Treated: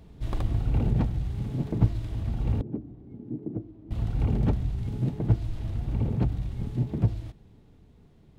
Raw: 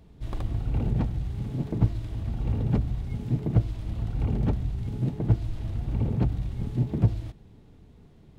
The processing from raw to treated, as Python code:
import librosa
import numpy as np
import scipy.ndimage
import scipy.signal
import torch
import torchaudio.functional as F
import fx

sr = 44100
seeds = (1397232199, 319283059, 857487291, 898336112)

y = fx.bandpass_q(x, sr, hz=310.0, q=3.1, at=(2.61, 3.91))
y = fx.rider(y, sr, range_db=5, speed_s=2.0)